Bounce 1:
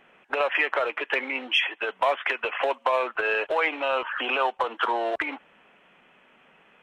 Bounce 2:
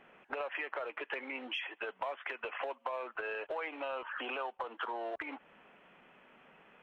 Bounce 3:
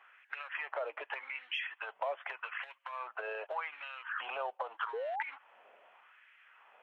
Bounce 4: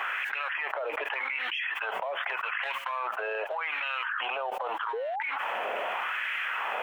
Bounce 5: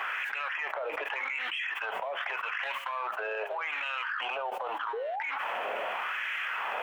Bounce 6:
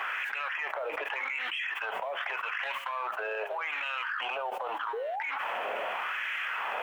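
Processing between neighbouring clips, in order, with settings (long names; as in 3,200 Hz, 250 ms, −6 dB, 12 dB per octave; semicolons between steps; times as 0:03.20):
high-shelf EQ 3,100 Hz −9 dB; downward compressor 3 to 1, threshold −38 dBFS, peak gain reduction 14 dB; level −1.5 dB
auto-filter high-pass sine 0.83 Hz 560–1,900 Hz; sound drawn into the spectrogram rise, 0:04.93–0:05.23, 420–940 Hz −34 dBFS; level −3 dB
envelope flattener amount 100%
flanger 0.69 Hz, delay 8.8 ms, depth 7.1 ms, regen +81%; in parallel at −7 dB: soft clipping −30 dBFS, distortion −18 dB
bit reduction 12 bits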